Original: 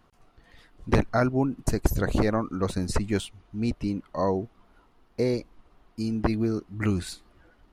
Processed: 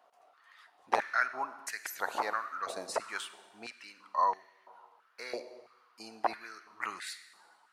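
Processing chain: reverb RT60 1.4 s, pre-delay 33 ms, DRR 12.5 dB; stepped high-pass 3 Hz 660–1900 Hz; gain -5.5 dB

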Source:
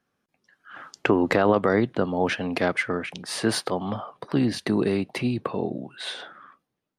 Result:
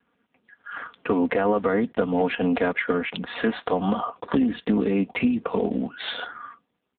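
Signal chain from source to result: block floating point 5-bit; HPF 140 Hz 6 dB/oct; comb 4.2 ms, depth 65%; compressor 6:1, threshold -27 dBFS, peak gain reduction 12.5 dB; gain +9 dB; AMR-NB 5.9 kbps 8000 Hz

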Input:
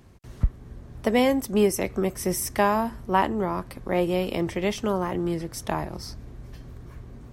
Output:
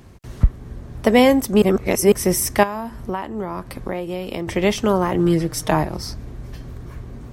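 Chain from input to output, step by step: 1.62–2.12 reverse; 2.63–4.48 compressor 12:1, threshold -30 dBFS, peak gain reduction 15.5 dB; 5.18–5.83 comb 6.5 ms, depth 67%; gain +7.5 dB

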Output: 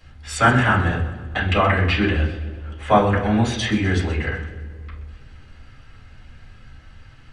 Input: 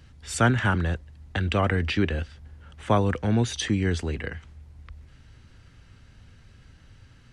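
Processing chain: low shelf 480 Hz -9.5 dB; split-band echo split 590 Hz, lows 0.227 s, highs 0.126 s, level -14 dB; reverb RT60 0.40 s, pre-delay 4 ms, DRR -8 dB; gain -2.5 dB

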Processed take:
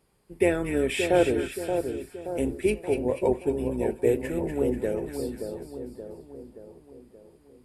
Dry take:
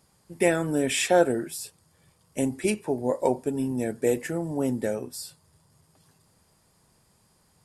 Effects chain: octaver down 2 oct, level -4 dB; fifteen-band EQ 400 Hz +9 dB, 2500 Hz +5 dB, 6300 Hz -9 dB; split-band echo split 1200 Hz, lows 0.576 s, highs 0.243 s, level -6.5 dB; gain -5.5 dB

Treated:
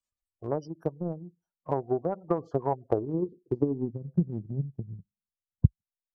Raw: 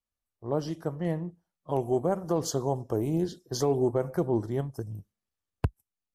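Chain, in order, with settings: spectral gate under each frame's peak -20 dB strong; low-pass sweep 7600 Hz -> 180 Hz, 1.17–4.01; transient shaper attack +10 dB, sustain -5 dB; mismatched tape noise reduction encoder only; gain -7 dB

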